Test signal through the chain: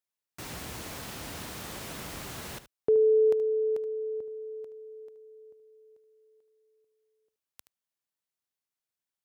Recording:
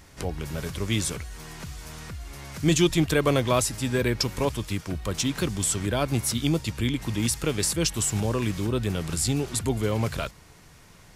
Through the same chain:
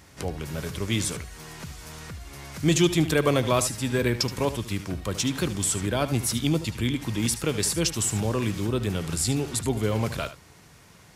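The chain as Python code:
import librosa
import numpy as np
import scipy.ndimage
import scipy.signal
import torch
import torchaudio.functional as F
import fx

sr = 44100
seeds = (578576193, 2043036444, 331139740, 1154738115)

y = scipy.signal.sosfilt(scipy.signal.butter(2, 63.0, 'highpass', fs=sr, output='sos'), x)
y = y + 10.0 ** (-13.0 / 20.0) * np.pad(y, (int(75 * sr / 1000.0), 0))[:len(y)]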